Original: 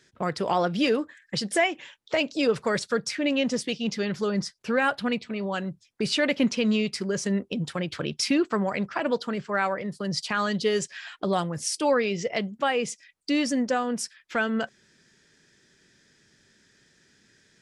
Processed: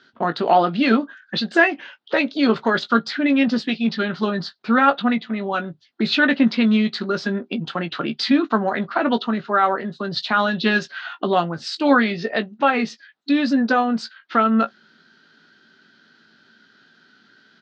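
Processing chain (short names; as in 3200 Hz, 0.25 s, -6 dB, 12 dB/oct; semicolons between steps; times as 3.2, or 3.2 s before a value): formant shift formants -2 st; speaker cabinet 230–4300 Hz, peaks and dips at 240 Hz +6 dB, 500 Hz -4 dB, 720 Hz +5 dB, 1400 Hz +5 dB, 2300 Hz -6 dB, 3800 Hz +4 dB; doubler 18 ms -9 dB; gain +6 dB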